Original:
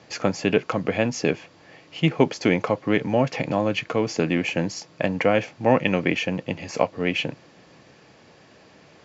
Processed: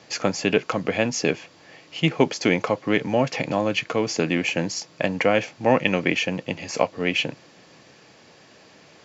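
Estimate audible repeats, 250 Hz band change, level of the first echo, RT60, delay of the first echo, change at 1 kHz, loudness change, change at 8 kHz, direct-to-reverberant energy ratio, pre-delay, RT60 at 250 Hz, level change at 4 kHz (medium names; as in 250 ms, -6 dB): no echo, -1.0 dB, no echo, no reverb, no echo, +0.5 dB, +0.5 dB, no reading, no reverb, no reverb, no reverb, +3.5 dB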